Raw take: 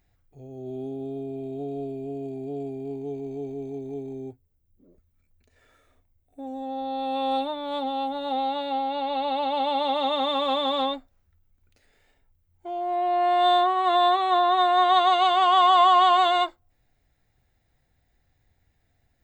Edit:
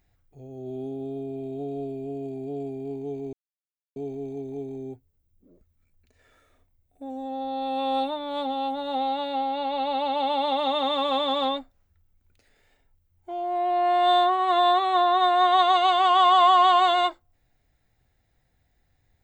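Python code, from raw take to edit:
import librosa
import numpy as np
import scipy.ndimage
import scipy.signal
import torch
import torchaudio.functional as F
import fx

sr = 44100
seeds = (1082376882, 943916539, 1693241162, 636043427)

y = fx.edit(x, sr, fx.insert_silence(at_s=3.33, length_s=0.63), tone=tone)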